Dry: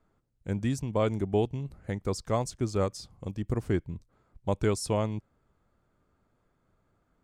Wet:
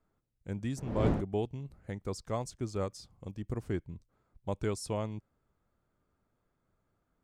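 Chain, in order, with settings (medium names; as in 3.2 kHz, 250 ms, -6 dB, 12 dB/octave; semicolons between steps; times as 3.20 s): 0.76–1.20 s: wind noise 360 Hz -26 dBFS; trim -6.5 dB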